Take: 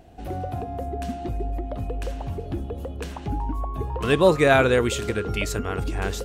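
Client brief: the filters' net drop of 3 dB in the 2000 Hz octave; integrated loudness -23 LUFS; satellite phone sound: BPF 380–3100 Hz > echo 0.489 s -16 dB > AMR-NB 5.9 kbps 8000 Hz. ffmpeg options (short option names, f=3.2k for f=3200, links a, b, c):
-af "highpass=380,lowpass=3.1k,equalizer=f=2k:t=o:g=-3.5,aecho=1:1:489:0.158,volume=4.5dB" -ar 8000 -c:a libopencore_amrnb -b:a 5900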